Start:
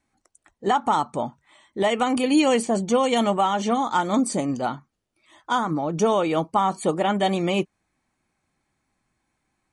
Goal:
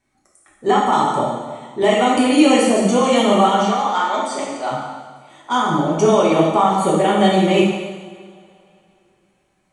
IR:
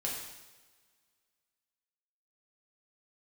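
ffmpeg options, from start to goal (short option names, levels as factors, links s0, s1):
-filter_complex "[0:a]asplit=3[s0][s1][s2];[s0]afade=t=out:st=3.62:d=0.02[s3];[s1]highpass=630,lowpass=5400,afade=t=in:st=3.62:d=0.02,afade=t=out:st=4.7:d=0.02[s4];[s2]afade=t=in:st=4.7:d=0.02[s5];[s3][s4][s5]amix=inputs=3:normalize=0[s6];[1:a]atrim=start_sample=2205,asetrate=33516,aresample=44100[s7];[s6][s7]afir=irnorm=-1:irlink=0,volume=1.19"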